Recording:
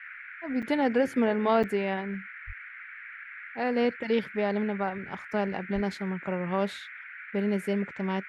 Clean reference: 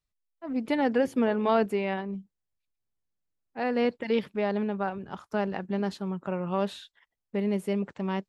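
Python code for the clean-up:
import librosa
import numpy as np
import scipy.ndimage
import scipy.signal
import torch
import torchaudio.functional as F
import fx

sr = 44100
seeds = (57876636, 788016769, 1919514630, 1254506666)

y = fx.highpass(x, sr, hz=140.0, slope=24, at=(2.46, 2.58), fade=0.02)
y = fx.highpass(y, sr, hz=140.0, slope=24, at=(5.74, 5.86), fade=0.02)
y = fx.fix_interpolate(y, sr, at_s=(0.62, 1.63), length_ms=6.7)
y = fx.noise_reduce(y, sr, print_start_s=2.54, print_end_s=3.04, reduce_db=30.0)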